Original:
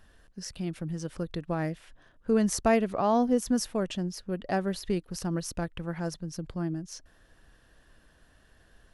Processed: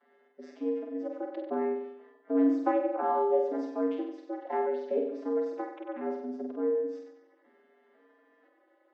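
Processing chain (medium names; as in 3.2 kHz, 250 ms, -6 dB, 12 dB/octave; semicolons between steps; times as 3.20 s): vocoder on a broken chord minor triad, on D#3, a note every 496 ms; low-pass 2.1 kHz 12 dB/octave; in parallel at -0.5 dB: compression 6:1, threshold -39 dBFS, peak gain reduction 19.5 dB; on the sum: frequency shift +93 Hz; resonant low shelf 350 Hz -7.5 dB, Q 1.5; flutter echo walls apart 8.1 m, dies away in 0.78 s; Vorbis 32 kbps 22.05 kHz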